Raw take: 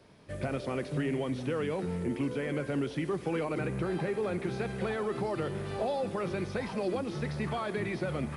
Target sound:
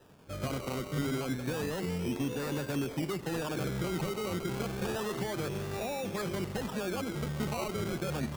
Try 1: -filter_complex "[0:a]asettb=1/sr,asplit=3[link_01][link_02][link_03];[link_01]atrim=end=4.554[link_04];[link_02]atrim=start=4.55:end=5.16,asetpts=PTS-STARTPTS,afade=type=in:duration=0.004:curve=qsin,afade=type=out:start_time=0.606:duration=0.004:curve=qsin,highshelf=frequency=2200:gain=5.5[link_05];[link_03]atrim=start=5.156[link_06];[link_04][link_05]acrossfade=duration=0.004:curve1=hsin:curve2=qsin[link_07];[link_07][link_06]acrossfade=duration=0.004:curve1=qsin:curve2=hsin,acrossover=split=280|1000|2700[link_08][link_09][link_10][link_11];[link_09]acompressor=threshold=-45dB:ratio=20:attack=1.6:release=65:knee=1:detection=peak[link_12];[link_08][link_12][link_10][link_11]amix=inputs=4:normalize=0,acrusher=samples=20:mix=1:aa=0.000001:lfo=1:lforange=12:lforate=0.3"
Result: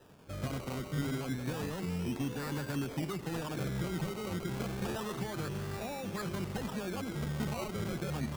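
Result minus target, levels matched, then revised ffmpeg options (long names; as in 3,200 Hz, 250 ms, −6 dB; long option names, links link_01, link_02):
downward compressor: peak gain reduction +9.5 dB
-filter_complex "[0:a]asettb=1/sr,asplit=3[link_01][link_02][link_03];[link_01]atrim=end=4.554[link_04];[link_02]atrim=start=4.55:end=5.16,asetpts=PTS-STARTPTS,afade=type=in:duration=0.004:curve=qsin,afade=type=out:start_time=0.606:duration=0.004:curve=qsin,highshelf=frequency=2200:gain=5.5[link_05];[link_03]atrim=start=5.156[link_06];[link_04][link_05]acrossfade=duration=0.004:curve1=hsin:curve2=qsin[link_07];[link_07][link_06]acrossfade=duration=0.004:curve1=qsin:curve2=hsin,acrossover=split=280|1000|2700[link_08][link_09][link_10][link_11];[link_09]acompressor=threshold=-35dB:ratio=20:attack=1.6:release=65:knee=1:detection=peak[link_12];[link_08][link_12][link_10][link_11]amix=inputs=4:normalize=0,acrusher=samples=20:mix=1:aa=0.000001:lfo=1:lforange=12:lforate=0.3"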